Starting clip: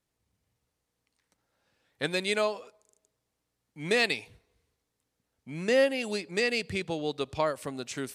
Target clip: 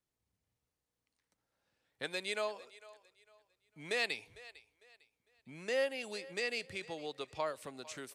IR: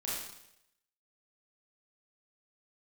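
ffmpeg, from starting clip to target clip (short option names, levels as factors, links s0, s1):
-filter_complex "[0:a]acrossover=split=400[s0][s1];[s0]acompressor=threshold=0.00631:ratio=6[s2];[s1]aecho=1:1:452|904|1356:0.112|0.0348|0.0108[s3];[s2][s3]amix=inputs=2:normalize=0,volume=0.398"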